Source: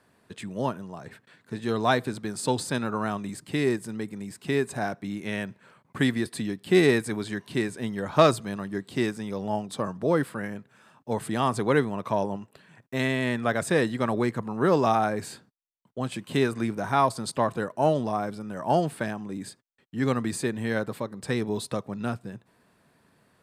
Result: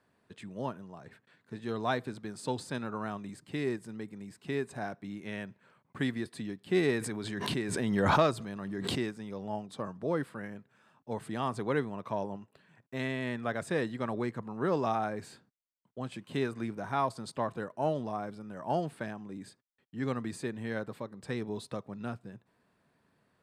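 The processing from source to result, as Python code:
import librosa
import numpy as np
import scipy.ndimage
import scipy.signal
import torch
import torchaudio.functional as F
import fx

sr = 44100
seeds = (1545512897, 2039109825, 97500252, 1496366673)

y = fx.high_shelf(x, sr, hz=7500.0, db=-9.0)
y = fx.pre_swell(y, sr, db_per_s=24.0, at=(6.99, 9.08))
y = y * librosa.db_to_amplitude(-8.0)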